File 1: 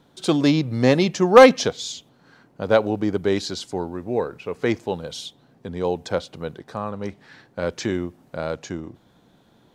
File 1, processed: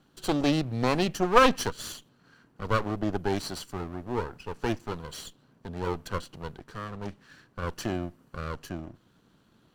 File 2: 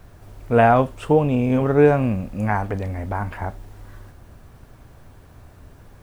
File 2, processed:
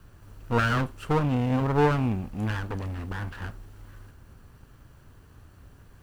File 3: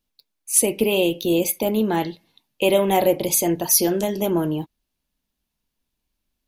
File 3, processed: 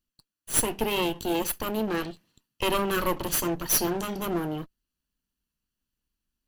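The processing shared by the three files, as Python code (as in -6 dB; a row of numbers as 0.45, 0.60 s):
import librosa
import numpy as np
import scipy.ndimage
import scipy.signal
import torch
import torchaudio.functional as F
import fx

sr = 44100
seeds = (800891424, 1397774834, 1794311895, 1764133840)

y = fx.lower_of_two(x, sr, delay_ms=0.67)
y = y * 10.0 ** (-5.0 / 20.0)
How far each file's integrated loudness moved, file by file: -8.5, -7.5, -7.5 LU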